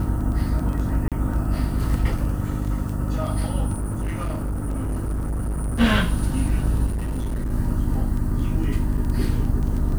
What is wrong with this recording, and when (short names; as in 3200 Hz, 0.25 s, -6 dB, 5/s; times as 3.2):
crackle 10/s
hum 50 Hz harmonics 6 -26 dBFS
1.08–1.12 gap 37 ms
3.73–5.81 clipped -22 dBFS
6.86–7.52 clipped -22 dBFS
8.97–8.98 gap 6.6 ms